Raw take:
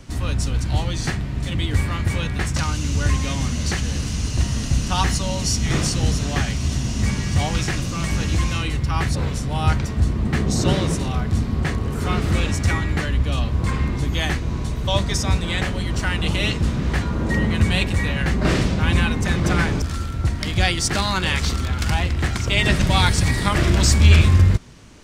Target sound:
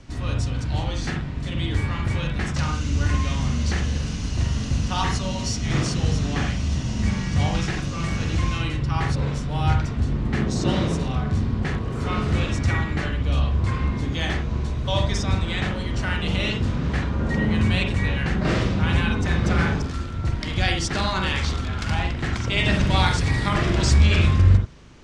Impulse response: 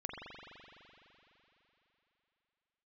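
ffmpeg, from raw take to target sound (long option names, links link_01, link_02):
-filter_complex "[0:a]lowpass=6400[link_01];[1:a]atrim=start_sample=2205,atrim=end_sample=3969[link_02];[link_01][link_02]afir=irnorm=-1:irlink=0"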